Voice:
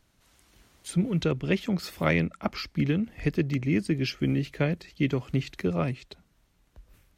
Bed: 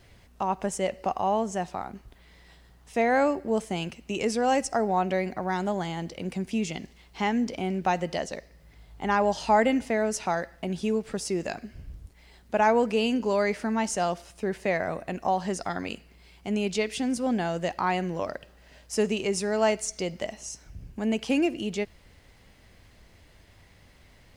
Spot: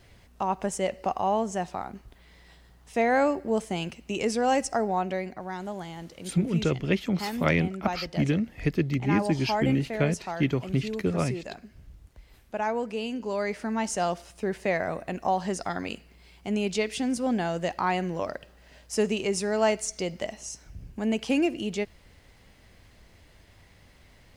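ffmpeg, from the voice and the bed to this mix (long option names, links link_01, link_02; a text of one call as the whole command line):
ffmpeg -i stem1.wav -i stem2.wav -filter_complex "[0:a]adelay=5400,volume=0.5dB[link_01];[1:a]volume=7dB,afade=type=out:start_time=4.68:duration=0.76:silence=0.446684,afade=type=in:start_time=13.13:duration=0.95:silence=0.446684[link_02];[link_01][link_02]amix=inputs=2:normalize=0" out.wav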